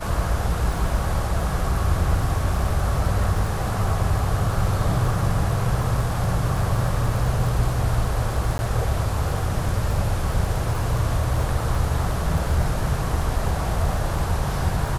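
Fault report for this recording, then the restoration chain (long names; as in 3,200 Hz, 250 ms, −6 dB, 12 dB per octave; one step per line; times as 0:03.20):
surface crackle 24 per second −28 dBFS
0:08.58–0:08.59: drop-out 10 ms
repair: click removal
repair the gap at 0:08.58, 10 ms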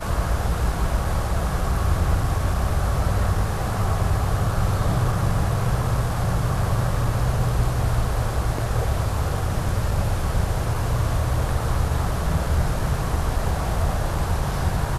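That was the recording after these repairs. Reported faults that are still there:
none of them is left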